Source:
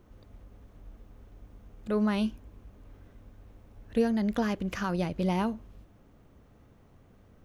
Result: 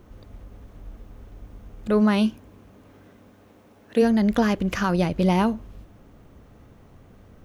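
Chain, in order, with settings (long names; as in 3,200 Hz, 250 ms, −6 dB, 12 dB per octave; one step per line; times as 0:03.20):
0:02.00–0:04.01: high-pass filter 86 Hz → 250 Hz 12 dB per octave
level +8 dB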